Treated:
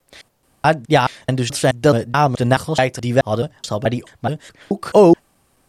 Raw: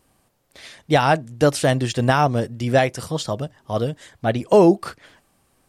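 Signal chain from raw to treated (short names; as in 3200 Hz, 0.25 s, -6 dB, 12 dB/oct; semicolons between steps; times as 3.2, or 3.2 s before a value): slices in reverse order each 0.214 s, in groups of 3; gain +3 dB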